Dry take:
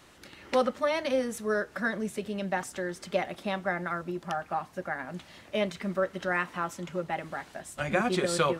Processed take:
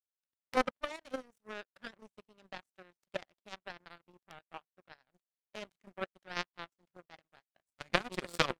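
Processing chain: power-law curve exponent 3; level quantiser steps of 9 dB; gain +11 dB

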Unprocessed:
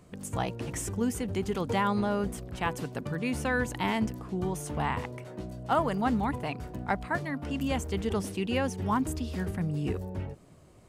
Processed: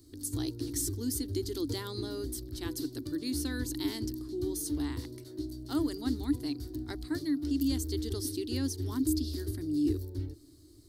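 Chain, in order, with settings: EQ curve 110 Hz 0 dB, 190 Hz -28 dB, 300 Hz +11 dB, 510 Hz -17 dB, 820 Hz -21 dB, 1800 Hz -12 dB, 2600 Hz -17 dB, 4300 Hz +11 dB, 7100 Hz 0 dB, 14000 Hz +11 dB

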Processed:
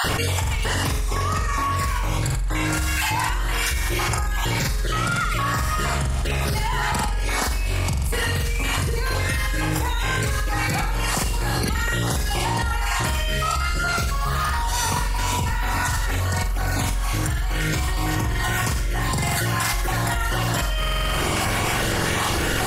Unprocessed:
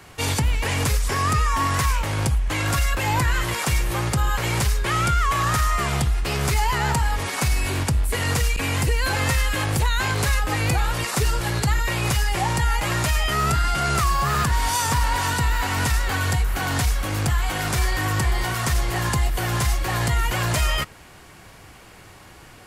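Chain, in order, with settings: random spectral dropouts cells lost 38%; on a send: flutter echo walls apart 7.7 m, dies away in 0.81 s; on the sum: fast leveller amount 100%; gain -8 dB

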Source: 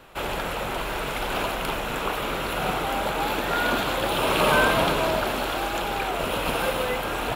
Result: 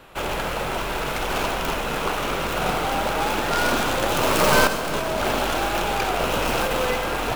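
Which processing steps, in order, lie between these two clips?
tracing distortion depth 0.24 ms; 4.67–6.96 negative-ratio compressor -25 dBFS, ratio -0.5; reverb RT60 1.4 s, pre-delay 70 ms, DRR 9 dB; gain +2 dB

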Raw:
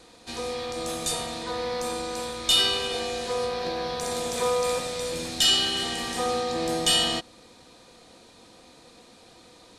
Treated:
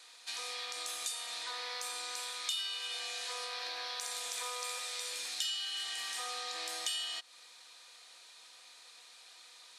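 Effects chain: HPF 1500 Hz 12 dB/oct; compressor 4:1, threshold -37 dBFS, peak gain reduction 16.5 dB

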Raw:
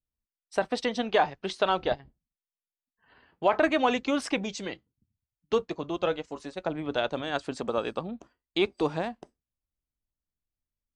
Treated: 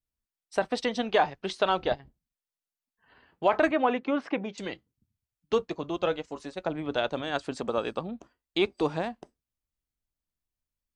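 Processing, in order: 3.71–4.58 BPF 180–2000 Hz

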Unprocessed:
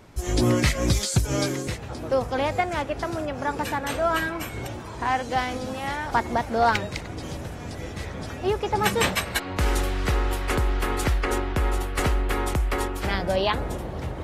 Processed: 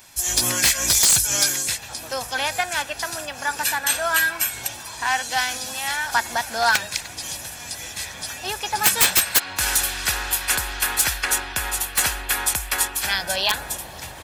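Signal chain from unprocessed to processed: pre-emphasis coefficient 0.97; comb 1.2 ms, depth 39%; dynamic EQ 1500 Hz, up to +6 dB, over -58 dBFS, Q 6.1; wrapped overs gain 21 dB; maximiser +22 dB; gain -6 dB

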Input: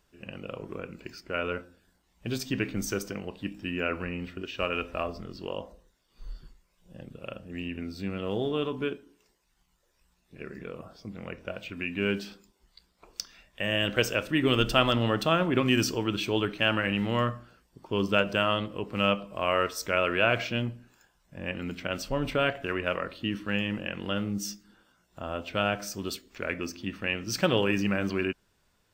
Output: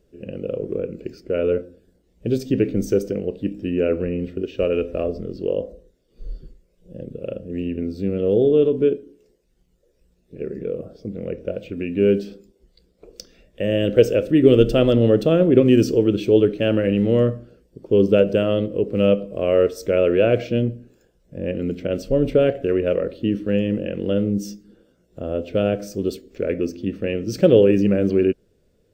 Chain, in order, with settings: resonant low shelf 680 Hz +11.5 dB, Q 3; gain -3 dB

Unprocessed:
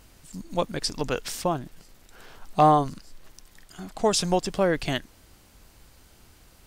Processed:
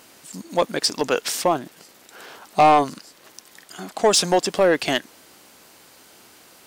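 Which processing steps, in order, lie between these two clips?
HPF 280 Hz 12 dB/oct; soft clip -16.5 dBFS, distortion -11 dB; gain +8.5 dB

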